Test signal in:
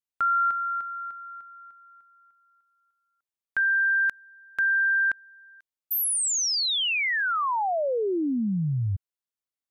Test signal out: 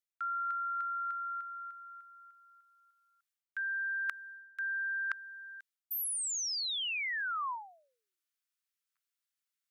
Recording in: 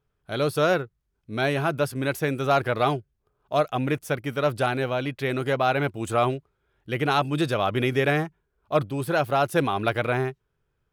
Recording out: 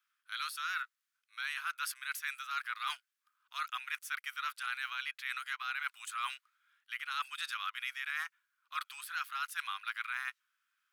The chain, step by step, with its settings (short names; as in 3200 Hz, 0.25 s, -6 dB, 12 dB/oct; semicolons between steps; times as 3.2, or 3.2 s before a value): steep high-pass 1200 Hz 48 dB/oct; reverse; compressor 10:1, threshold -38 dBFS; reverse; gain +3.5 dB